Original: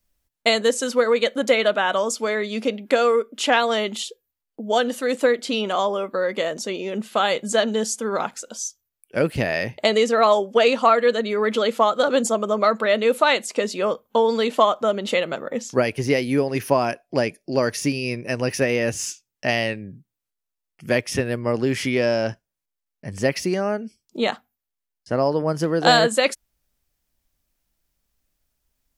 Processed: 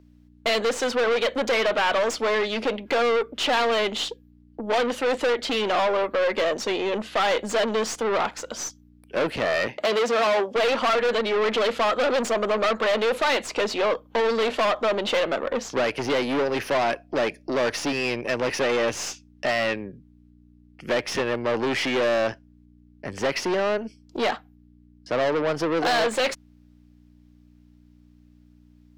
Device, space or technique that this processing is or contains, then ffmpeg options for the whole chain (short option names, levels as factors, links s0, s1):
valve amplifier with mains hum: -filter_complex "[0:a]aeval=exprs='(tanh(25.1*val(0)+0.55)-tanh(0.55))/25.1':c=same,aeval=exprs='val(0)+0.00316*(sin(2*PI*60*n/s)+sin(2*PI*2*60*n/s)/2+sin(2*PI*3*60*n/s)/3+sin(2*PI*4*60*n/s)/4+sin(2*PI*5*60*n/s)/5)':c=same,asettb=1/sr,asplit=3[s0][s1][s2];[s0]atrim=end=9.674[s3];[s1]atrim=start=9.67:end=10.56,asetpts=PTS-STARTPTS,afade=t=in:d=0.004:c=qsin,afade=t=out:st=0.886:d=0.004:c=qsin,highpass=140[s4];[s2]atrim=start=10.556[s5];[s3][s4]acrossfade=d=0.004:c1=hsin:c2=qsin[s6];[s6][s5]acrossfade=d=0.004:c1=qsin:c2=hsin,acrossover=split=270 5200:gain=0.2 1 0.158[s7][s8][s9];[s7][s8][s9]amix=inputs=3:normalize=0,volume=2.82"